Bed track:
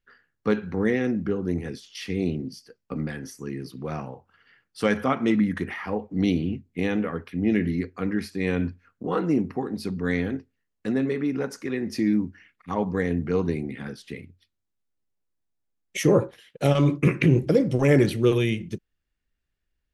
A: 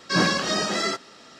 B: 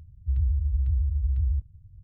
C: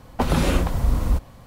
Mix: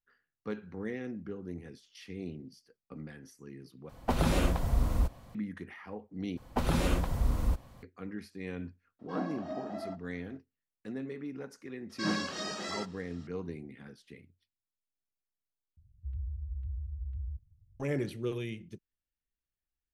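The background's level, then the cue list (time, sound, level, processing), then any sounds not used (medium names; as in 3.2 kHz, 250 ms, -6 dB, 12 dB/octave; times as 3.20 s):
bed track -14.5 dB
3.89 s: replace with C -7.5 dB + peaking EQ 670 Hz +4 dB 0.21 oct
6.37 s: replace with C -8.5 dB
8.99 s: add A -4 dB + two resonant band-passes 430 Hz, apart 1.3 oct
11.89 s: add A -13 dB, fades 0.02 s
15.77 s: replace with B -13.5 dB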